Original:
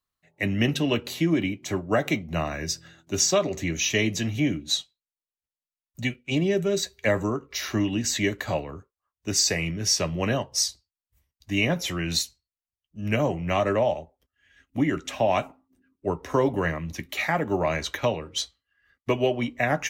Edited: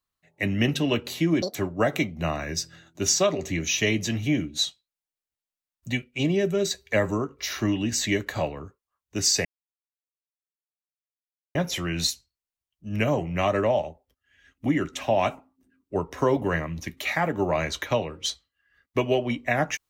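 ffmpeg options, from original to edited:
-filter_complex "[0:a]asplit=5[a][b][c][d][e];[a]atrim=end=1.424[f];[b]atrim=start=1.42:end=1.67,asetpts=PTS-STARTPTS,asetrate=84672,aresample=44100,atrim=end_sample=5742,asetpts=PTS-STARTPTS[g];[c]atrim=start=1.666:end=9.57,asetpts=PTS-STARTPTS,afade=t=out:st=7.9:d=0.004:c=hsin[h];[d]atrim=start=9.57:end=11.67,asetpts=PTS-STARTPTS,volume=0[i];[e]atrim=start=11.67,asetpts=PTS-STARTPTS,afade=t=in:d=0.004:c=hsin[j];[f][g]acrossfade=d=0.004:c1=hsin:c2=hsin[k];[h][i][j]concat=n=3:v=0:a=1[l];[k][l]acrossfade=d=0.004:c1=hsin:c2=hsin"

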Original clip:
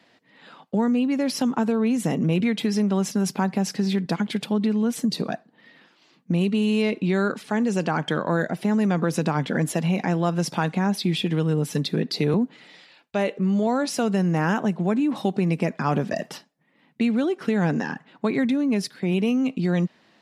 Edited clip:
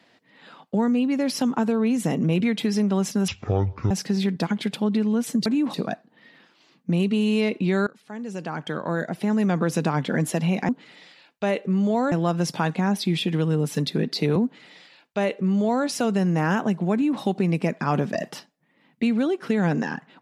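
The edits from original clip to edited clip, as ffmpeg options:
-filter_complex "[0:a]asplit=8[a][b][c][d][e][f][g][h];[a]atrim=end=3.284[i];[b]atrim=start=3.28:end=3.6,asetpts=PTS-STARTPTS,asetrate=22491,aresample=44100[j];[c]atrim=start=3.596:end=5.152[k];[d]atrim=start=14.908:end=15.192[l];[e]atrim=start=5.148:end=7.28,asetpts=PTS-STARTPTS,afade=t=out:st=2.128:d=0.004:c=hsin:silence=0.0891251[m];[f]atrim=start=7.28:end=10.102,asetpts=PTS-STARTPTS,afade=t=in:d=1.62:silence=0.0891251[n];[g]atrim=start=12.408:end=13.842[o];[h]atrim=start=10.098[p];[i][j]acrossfade=d=0.004:c1=hsin:c2=hsin[q];[q][k]acrossfade=d=0.004:c1=hsin:c2=hsin[r];[r][l]acrossfade=d=0.004:c1=hsin:c2=hsin[s];[m][n]concat=n=2:v=0:a=1[t];[s][t]acrossfade=d=0.004:c1=hsin:c2=hsin[u];[u][o]acrossfade=d=0.004:c1=hsin:c2=hsin[v];[v][p]acrossfade=d=0.004:c1=hsin:c2=hsin"

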